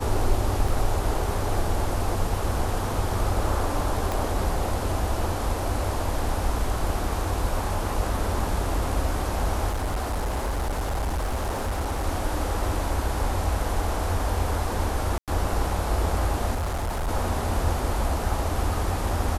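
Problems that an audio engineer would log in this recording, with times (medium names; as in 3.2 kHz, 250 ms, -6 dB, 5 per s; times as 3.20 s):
0.68 s: dropout 3.8 ms
4.12 s: pop
9.69–12.05 s: clipped -23 dBFS
15.18–15.28 s: dropout 97 ms
16.54–17.09 s: clipped -24 dBFS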